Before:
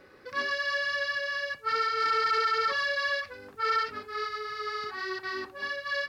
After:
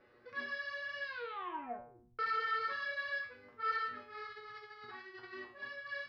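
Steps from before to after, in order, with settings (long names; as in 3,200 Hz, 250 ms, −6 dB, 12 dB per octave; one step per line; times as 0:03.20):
low-pass filter 3,100 Hz 12 dB per octave
0:01.04: tape stop 1.15 s
0:04.27–0:05.33: compressor whose output falls as the input rises −38 dBFS, ratio −0.5
tuned comb filter 120 Hz, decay 0.45 s, harmonics all, mix 90%
level +2 dB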